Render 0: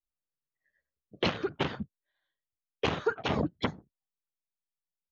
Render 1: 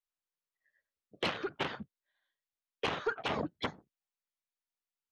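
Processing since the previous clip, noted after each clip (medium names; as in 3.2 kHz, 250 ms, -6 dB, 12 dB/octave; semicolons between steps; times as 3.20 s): overdrive pedal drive 12 dB, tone 4.6 kHz, clips at -15 dBFS; trim -6.5 dB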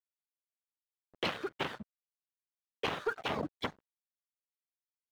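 crossover distortion -53 dBFS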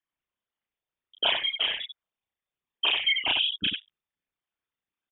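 resonances exaggerated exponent 3; frequency inversion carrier 3.6 kHz; loudspeakers at several distances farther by 11 m -1 dB, 32 m -5 dB; trim +7 dB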